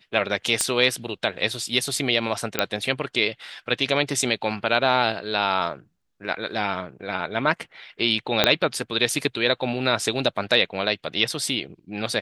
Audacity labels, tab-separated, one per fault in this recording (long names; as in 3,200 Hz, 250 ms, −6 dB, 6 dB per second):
0.610000	0.610000	click −6 dBFS
2.590000	2.590000	click −3 dBFS
8.440000	8.440000	click −1 dBFS